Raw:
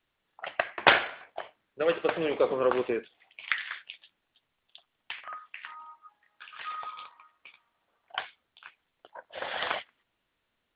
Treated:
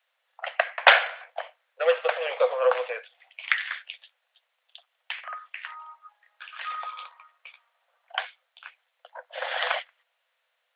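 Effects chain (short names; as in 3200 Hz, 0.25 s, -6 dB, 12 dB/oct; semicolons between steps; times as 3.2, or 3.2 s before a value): rippled Chebyshev high-pass 490 Hz, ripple 3 dB; gain +5.5 dB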